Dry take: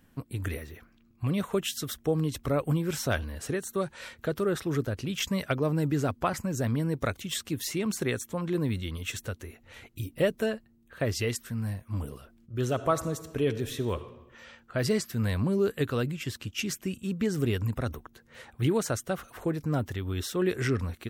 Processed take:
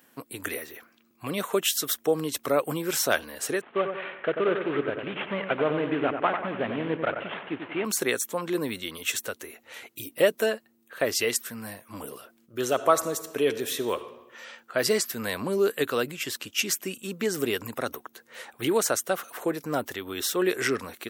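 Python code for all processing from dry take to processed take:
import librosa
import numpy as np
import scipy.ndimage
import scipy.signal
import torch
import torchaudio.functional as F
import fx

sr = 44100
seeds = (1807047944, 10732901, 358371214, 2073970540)

y = fx.chain(x, sr, fx.cvsd(bps=16000),
    fx.echo_wet_lowpass(ms=92, feedback_pct=50, hz=2400.0, wet_db=-7.0), at=(3.61, 7.85))
y = scipy.signal.sosfilt(scipy.signal.butter(2, 380.0, 'highpass', fs=sr, output='sos'), y)
y = fx.high_shelf(y, sr, hz=9700.0, db=8.5)
y = y * 10.0 ** (6.0 / 20.0)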